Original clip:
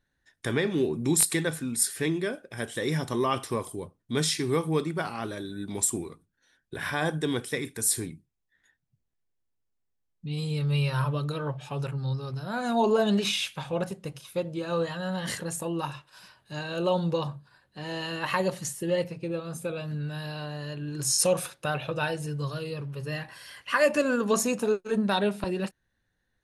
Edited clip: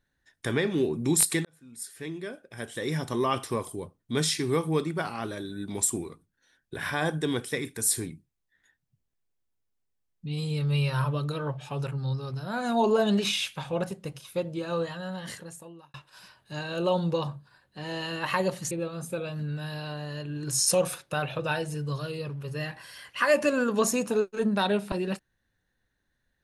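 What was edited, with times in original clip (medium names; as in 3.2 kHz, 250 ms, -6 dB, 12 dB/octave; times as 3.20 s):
1.45–3.27 s: fade in
14.56–15.94 s: fade out
18.71–19.23 s: delete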